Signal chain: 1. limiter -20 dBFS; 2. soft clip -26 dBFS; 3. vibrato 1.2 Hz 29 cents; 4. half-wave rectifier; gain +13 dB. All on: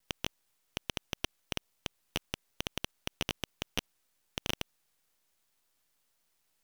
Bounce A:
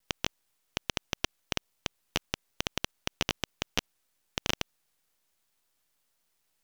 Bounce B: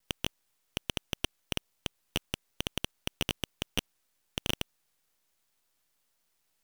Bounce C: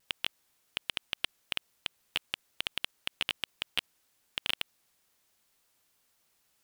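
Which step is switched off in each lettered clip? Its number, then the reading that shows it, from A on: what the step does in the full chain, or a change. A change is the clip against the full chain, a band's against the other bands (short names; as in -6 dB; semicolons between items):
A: 2, distortion -13 dB; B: 1, mean gain reduction 8.5 dB; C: 4, distortion -2 dB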